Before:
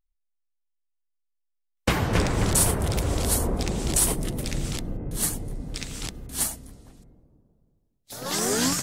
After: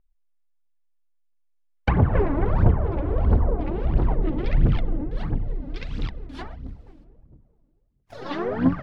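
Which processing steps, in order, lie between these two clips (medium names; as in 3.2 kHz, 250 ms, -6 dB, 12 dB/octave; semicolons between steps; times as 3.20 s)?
low-pass that closes with the level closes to 1.3 kHz, closed at -21.5 dBFS; 4.11–5.04 s: waveshaping leveller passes 1; phaser 1.5 Hz, delay 3.7 ms, feedback 72%; distance through air 330 m; 6.68–8.13 s: sliding maximum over 9 samples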